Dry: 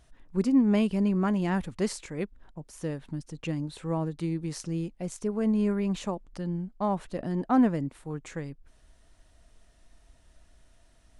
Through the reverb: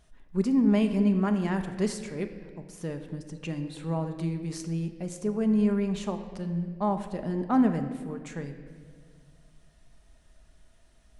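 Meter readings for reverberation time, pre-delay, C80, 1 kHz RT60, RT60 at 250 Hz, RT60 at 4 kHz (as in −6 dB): 1.8 s, 5 ms, 10.5 dB, 1.6 s, 2.3 s, 1.3 s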